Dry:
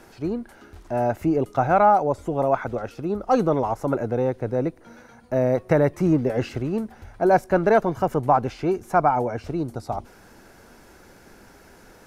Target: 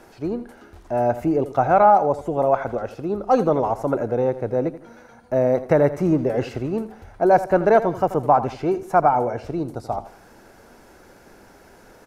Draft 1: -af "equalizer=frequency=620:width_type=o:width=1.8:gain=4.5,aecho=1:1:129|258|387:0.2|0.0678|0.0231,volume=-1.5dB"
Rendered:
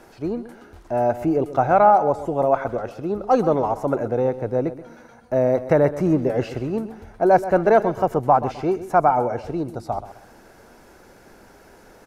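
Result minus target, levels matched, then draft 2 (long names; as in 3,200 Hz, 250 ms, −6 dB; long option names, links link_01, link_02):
echo 46 ms late
-af "equalizer=frequency=620:width_type=o:width=1.8:gain=4.5,aecho=1:1:83|166|249:0.2|0.0678|0.0231,volume=-1.5dB"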